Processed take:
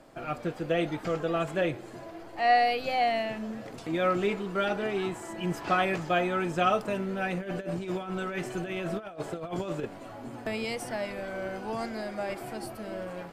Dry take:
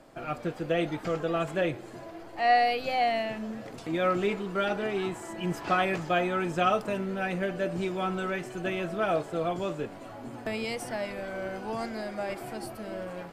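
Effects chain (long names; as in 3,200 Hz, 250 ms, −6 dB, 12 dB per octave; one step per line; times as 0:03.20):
0:07.37–0:09.85: compressor whose output falls as the input rises −33 dBFS, ratio −0.5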